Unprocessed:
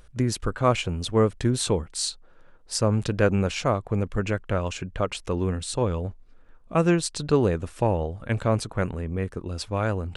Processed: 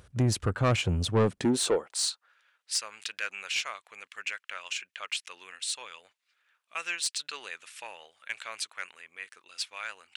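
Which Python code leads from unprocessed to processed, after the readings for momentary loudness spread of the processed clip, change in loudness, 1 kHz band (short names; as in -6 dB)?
18 LU, -5.5 dB, -8.5 dB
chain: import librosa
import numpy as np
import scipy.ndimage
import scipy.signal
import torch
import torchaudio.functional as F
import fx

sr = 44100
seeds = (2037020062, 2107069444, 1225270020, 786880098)

y = fx.filter_sweep_highpass(x, sr, from_hz=86.0, to_hz=2300.0, start_s=1.07, end_s=2.41, q=1.5)
y = 10.0 ** (-18.5 / 20.0) * np.tanh(y / 10.0 ** (-18.5 / 20.0))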